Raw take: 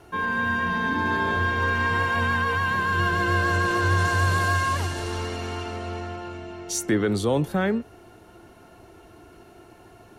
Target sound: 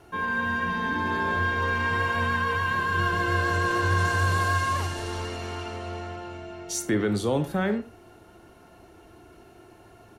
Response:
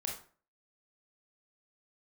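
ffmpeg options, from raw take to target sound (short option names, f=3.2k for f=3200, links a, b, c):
-filter_complex "[0:a]asplit=2[a][b];[b]adelay=90,highpass=300,lowpass=3.4k,asoftclip=type=hard:threshold=-20.5dB,volume=-14dB[c];[a][c]amix=inputs=2:normalize=0,asplit=2[d][e];[1:a]atrim=start_sample=2205,atrim=end_sample=3528[f];[e][f]afir=irnorm=-1:irlink=0,volume=-5.5dB[g];[d][g]amix=inputs=2:normalize=0,volume=-5.5dB"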